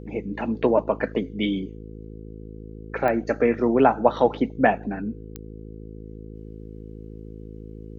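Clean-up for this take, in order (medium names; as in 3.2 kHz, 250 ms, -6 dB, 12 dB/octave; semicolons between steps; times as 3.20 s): de-click; de-hum 53.8 Hz, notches 9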